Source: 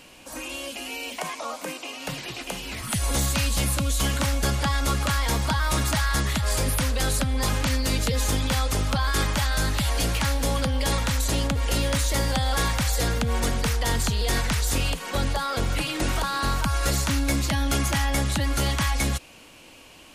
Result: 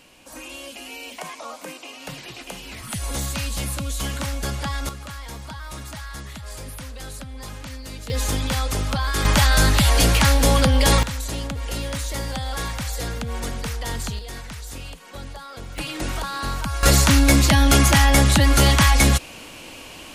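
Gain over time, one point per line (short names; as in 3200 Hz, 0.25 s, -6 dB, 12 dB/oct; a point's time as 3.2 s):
-3 dB
from 4.89 s -11.5 dB
from 8.1 s +0.5 dB
from 9.25 s +8 dB
from 11.03 s -4 dB
from 14.19 s -11 dB
from 15.78 s -2 dB
from 16.83 s +9 dB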